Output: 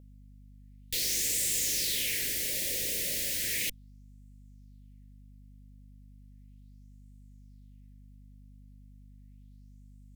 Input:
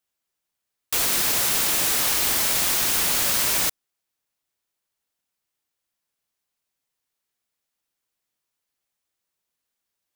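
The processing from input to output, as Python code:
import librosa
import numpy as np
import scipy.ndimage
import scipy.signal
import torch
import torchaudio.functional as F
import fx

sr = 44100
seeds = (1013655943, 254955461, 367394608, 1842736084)

y = fx.tube_stage(x, sr, drive_db=32.0, bias=0.6)
y = scipy.signal.sosfilt(scipy.signal.ellip(3, 1.0, 70, [530.0, 1900.0], 'bandstop', fs=sr, output='sos'), y)
y = fx.add_hum(y, sr, base_hz=50, snr_db=15)
y = fx.bell_lfo(y, sr, hz=0.35, low_hz=520.0, high_hz=7900.0, db=9)
y = F.gain(torch.from_numpy(y), 2.0).numpy()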